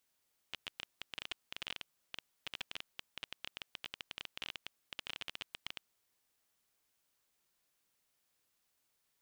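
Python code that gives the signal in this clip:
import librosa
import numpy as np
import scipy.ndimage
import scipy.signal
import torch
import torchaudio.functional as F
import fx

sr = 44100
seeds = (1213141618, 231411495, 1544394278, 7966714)

y = fx.geiger_clicks(sr, seeds[0], length_s=5.39, per_s=16.0, level_db=-23.5)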